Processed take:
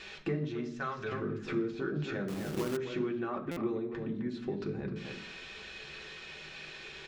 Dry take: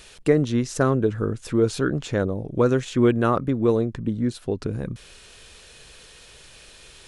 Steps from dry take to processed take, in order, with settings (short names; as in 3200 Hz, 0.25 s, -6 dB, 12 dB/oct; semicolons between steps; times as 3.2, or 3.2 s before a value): speakerphone echo 0.26 s, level -11 dB; de-esser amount 90%; 0.68–1.12 passive tone stack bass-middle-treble 10-0-10; compressor 12:1, threshold -32 dBFS, peak gain reduction 19.5 dB; air absorption 170 m; reverb RT60 0.60 s, pre-delay 3 ms, DRR 1 dB; 2.28–2.77 companded quantiser 4-bit; stuck buffer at 3.51, samples 256, times 9